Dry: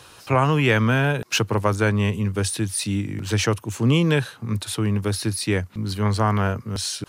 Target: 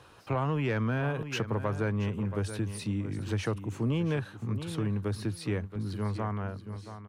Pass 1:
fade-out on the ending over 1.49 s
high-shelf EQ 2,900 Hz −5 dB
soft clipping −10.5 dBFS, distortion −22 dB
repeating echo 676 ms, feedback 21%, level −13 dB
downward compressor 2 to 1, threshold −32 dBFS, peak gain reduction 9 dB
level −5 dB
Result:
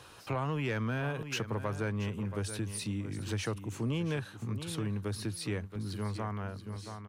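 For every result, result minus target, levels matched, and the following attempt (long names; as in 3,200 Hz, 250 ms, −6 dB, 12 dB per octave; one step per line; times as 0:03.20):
8,000 Hz band +7.5 dB; downward compressor: peak gain reduction +4 dB
fade-out on the ending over 1.49 s
high-shelf EQ 2,900 Hz −14 dB
soft clipping −10.5 dBFS, distortion −23 dB
repeating echo 676 ms, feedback 21%, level −13 dB
downward compressor 2 to 1, threshold −32 dBFS, peak gain reduction 9 dB
level −5 dB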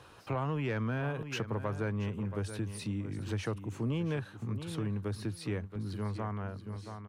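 downward compressor: peak gain reduction +4 dB
fade-out on the ending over 1.49 s
high-shelf EQ 2,900 Hz −14 dB
soft clipping −10.5 dBFS, distortion −23 dB
repeating echo 676 ms, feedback 21%, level −13 dB
downward compressor 2 to 1, threshold −24 dBFS, peak gain reduction 5 dB
level −5 dB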